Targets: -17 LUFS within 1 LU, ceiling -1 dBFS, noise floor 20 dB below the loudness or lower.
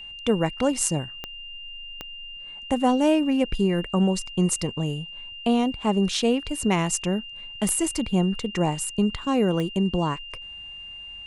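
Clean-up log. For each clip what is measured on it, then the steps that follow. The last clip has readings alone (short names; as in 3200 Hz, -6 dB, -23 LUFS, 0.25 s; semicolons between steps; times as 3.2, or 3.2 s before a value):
clicks 4; steady tone 2800 Hz; tone level -37 dBFS; loudness -24.0 LUFS; peak -6.0 dBFS; loudness target -17.0 LUFS
-> de-click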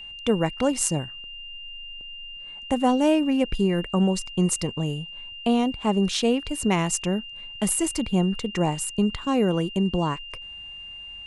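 clicks 0; steady tone 2800 Hz; tone level -37 dBFS
-> notch 2800 Hz, Q 30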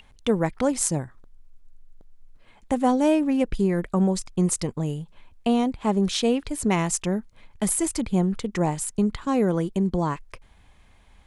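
steady tone none; loudness -24.5 LUFS; peak -6.0 dBFS; loudness target -17.0 LUFS
-> gain +7.5 dB; limiter -1 dBFS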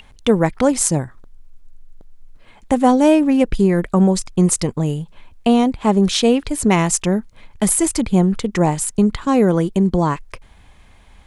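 loudness -17.0 LUFS; peak -1.0 dBFS; noise floor -47 dBFS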